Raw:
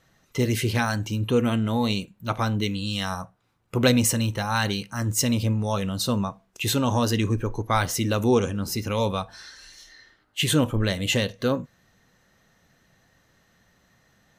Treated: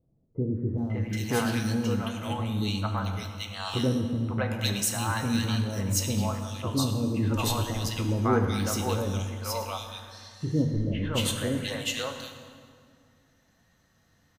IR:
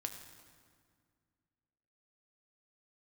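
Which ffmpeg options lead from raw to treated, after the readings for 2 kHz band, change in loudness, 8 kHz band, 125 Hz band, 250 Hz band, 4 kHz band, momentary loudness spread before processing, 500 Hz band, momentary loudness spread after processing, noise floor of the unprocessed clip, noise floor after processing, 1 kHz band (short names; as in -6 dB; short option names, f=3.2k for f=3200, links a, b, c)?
-5.5 dB, -4.0 dB, -3.5 dB, -2.0 dB, -3.5 dB, -4.0 dB, 10 LU, -5.5 dB, 8 LU, -65 dBFS, -66 dBFS, -4.5 dB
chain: -filter_complex "[0:a]acrossover=split=530|2000[a][b][c];[b]adelay=550[d];[c]adelay=780[e];[a][d][e]amix=inputs=3:normalize=0[f];[1:a]atrim=start_sample=2205,asetrate=40572,aresample=44100[g];[f][g]afir=irnorm=-1:irlink=0,volume=-2dB"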